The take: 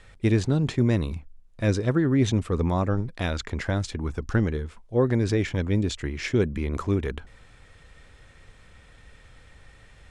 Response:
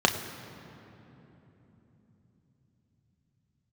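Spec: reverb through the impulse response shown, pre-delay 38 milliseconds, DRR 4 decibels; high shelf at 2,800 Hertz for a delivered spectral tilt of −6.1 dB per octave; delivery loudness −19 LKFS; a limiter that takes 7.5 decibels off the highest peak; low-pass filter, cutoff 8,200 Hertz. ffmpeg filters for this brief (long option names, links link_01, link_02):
-filter_complex "[0:a]lowpass=8200,highshelf=frequency=2800:gain=6.5,alimiter=limit=-18dB:level=0:latency=1,asplit=2[link_01][link_02];[1:a]atrim=start_sample=2205,adelay=38[link_03];[link_02][link_03]afir=irnorm=-1:irlink=0,volume=-19dB[link_04];[link_01][link_04]amix=inputs=2:normalize=0,volume=8dB"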